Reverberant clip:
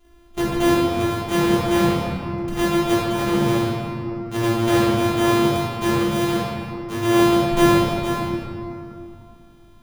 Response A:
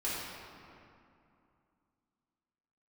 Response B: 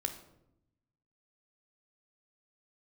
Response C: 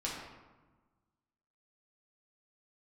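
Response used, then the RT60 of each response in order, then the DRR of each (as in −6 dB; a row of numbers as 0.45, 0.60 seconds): A; 2.6, 0.80, 1.3 seconds; −10.0, 6.5, −5.5 decibels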